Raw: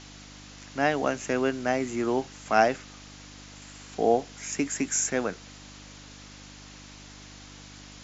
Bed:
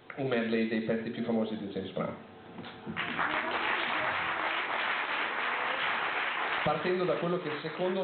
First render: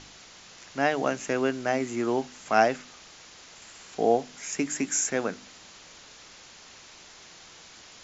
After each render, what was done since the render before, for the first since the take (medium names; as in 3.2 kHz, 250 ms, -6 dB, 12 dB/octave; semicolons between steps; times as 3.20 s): de-hum 50 Hz, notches 6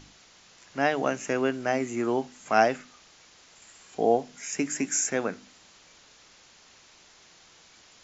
noise print and reduce 6 dB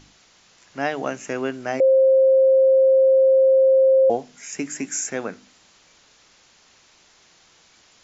1.80–4.10 s: bleep 530 Hz -11.5 dBFS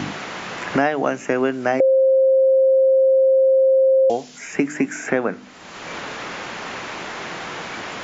three bands compressed up and down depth 100%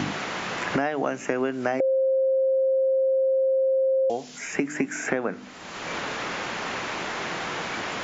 compression 3:1, threshold -23 dBFS, peak gain reduction 8 dB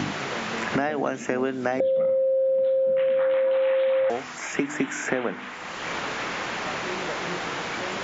add bed -6.5 dB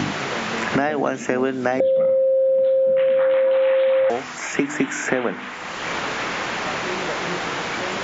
trim +4.5 dB